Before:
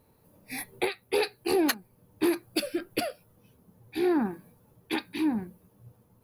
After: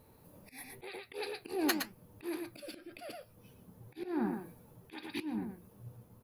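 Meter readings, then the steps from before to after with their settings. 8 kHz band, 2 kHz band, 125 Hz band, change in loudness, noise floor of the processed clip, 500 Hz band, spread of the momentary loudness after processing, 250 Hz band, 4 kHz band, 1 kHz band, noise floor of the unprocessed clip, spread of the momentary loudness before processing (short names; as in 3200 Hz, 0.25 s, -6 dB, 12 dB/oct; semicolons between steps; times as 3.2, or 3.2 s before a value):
-7.5 dB, -8.5 dB, -3.5 dB, -9.5 dB, -62 dBFS, -12.0 dB, 22 LU, -9.0 dB, -8.5 dB, -9.0 dB, -64 dBFS, 12 LU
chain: echo 0.115 s -10 dB; auto swell 0.495 s; flange 0.9 Hz, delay 1.2 ms, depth 10 ms, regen -78%; gain +6.5 dB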